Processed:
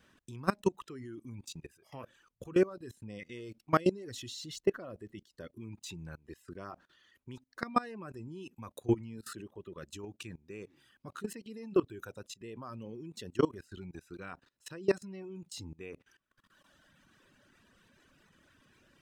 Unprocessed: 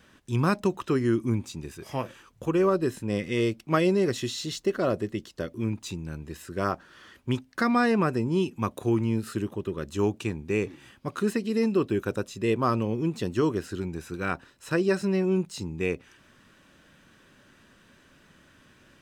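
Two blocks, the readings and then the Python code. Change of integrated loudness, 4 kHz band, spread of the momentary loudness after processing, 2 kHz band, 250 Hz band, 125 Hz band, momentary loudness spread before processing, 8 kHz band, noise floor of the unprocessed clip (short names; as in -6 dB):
-9.5 dB, -9.0 dB, 18 LU, -11.5 dB, -11.0 dB, -13.5 dB, 12 LU, -7.5 dB, -59 dBFS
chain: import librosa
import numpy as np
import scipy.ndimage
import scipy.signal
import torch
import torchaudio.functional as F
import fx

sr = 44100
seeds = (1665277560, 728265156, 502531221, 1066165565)

y = fx.dereverb_blind(x, sr, rt60_s=1.7)
y = fx.level_steps(y, sr, step_db=22)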